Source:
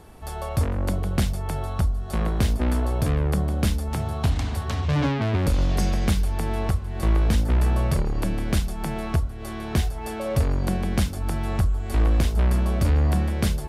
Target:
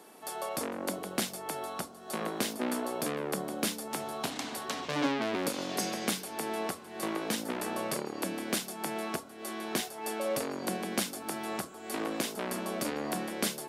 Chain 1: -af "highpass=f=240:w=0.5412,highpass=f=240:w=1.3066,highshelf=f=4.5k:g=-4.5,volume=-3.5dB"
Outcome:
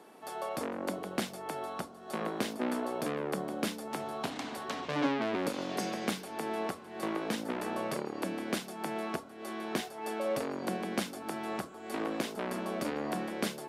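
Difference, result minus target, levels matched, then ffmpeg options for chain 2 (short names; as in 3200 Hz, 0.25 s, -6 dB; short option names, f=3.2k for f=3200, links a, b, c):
8000 Hz band -7.0 dB
-af "highpass=f=240:w=0.5412,highpass=f=240:w=1.3066,highshelf=f=4.5k:g=6.5,volume=-3.5dB"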